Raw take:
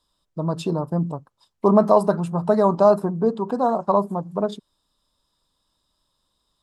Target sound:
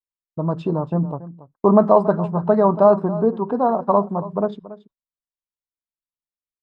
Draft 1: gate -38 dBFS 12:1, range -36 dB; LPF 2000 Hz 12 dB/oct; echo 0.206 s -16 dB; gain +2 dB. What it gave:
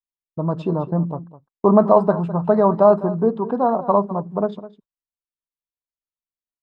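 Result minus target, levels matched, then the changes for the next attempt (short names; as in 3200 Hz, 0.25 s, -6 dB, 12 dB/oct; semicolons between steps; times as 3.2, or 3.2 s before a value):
echo 74 ms early
change: echo 0.28 s -16 dB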